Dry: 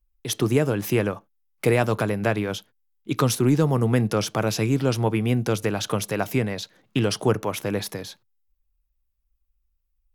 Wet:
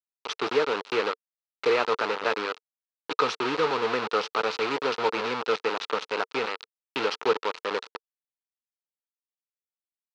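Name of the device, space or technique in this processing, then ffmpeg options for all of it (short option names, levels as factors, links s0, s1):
hand-held game console: -af "acrusher=bits=3:mix=0:aa=0.000001,highpass=430,equalizer=f=450:t=q:w=4:g=9,equalizer=f=650:t=q:w=4:g=-4,equalizer=f=930:t=q:w=4:g=6,equalizer=f=1300:t=q:w=4:g=9,equalizer=f=2600:t=q:w=4:g=4,equalizer=f=4100:t=q:w=4:g=4,lowpass=f=4800:w=0.5412,lowpass=f=4800:w=1.3066,volume=0.531"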